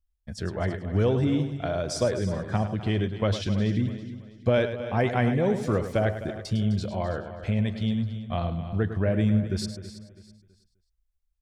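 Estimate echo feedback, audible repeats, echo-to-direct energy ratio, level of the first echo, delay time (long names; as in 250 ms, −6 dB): repeats not evenly spaced, 8, −7.5 dB, −10.5 dB, 104 ms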